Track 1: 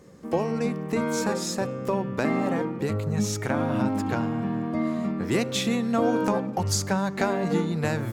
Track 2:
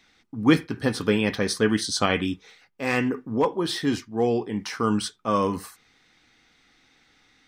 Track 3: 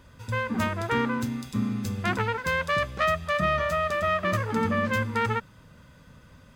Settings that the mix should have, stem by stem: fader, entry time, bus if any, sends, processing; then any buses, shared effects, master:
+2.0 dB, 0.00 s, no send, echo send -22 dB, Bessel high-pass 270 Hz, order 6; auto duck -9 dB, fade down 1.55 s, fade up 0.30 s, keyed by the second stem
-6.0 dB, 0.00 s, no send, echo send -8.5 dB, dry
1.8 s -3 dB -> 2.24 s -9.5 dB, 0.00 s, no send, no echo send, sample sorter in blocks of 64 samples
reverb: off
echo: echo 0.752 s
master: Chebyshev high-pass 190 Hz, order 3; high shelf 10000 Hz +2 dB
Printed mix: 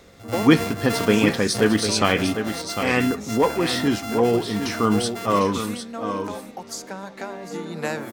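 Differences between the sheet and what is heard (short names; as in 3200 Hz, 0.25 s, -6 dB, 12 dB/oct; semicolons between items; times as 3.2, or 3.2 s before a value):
stem 2 -6.0 dB -> +3.0 dB; master: missing Chebyshev high-pass 190 Hz, order 3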